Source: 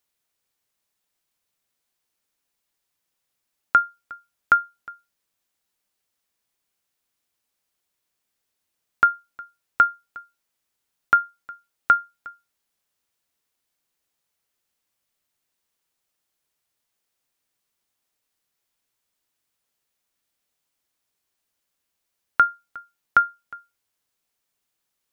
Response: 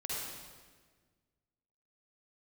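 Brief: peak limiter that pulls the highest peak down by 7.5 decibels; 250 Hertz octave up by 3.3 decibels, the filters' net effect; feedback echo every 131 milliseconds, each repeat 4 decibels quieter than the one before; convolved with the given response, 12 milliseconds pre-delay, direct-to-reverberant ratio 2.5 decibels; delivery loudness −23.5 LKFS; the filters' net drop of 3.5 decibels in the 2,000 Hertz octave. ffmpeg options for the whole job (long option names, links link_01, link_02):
-filter_complex "[0:a]equalizer=frequency=250:width_type=o:gain=4.5,equalizer=frequency=2000:width_type=o:gain=-7,alimiter=limit=-15dB:level=0:latency=1,aecho=1:1:131|262|393|524|655|786|917|1048|1179:0.631|0.398|0.25|0.158|0.0994|0.0626|0.0394|0.0249|0.0157,asplit=2[link_01][link_02];[1:a]atrim=start_sample=2205,adelay=12[link_03];[link_02][link_03]afir=irnorm=-1:irlink=0,volume=-5.5dB[link_04];[link_01][link_04]amix=inputs=2:normalize=0,volume=4.5dB"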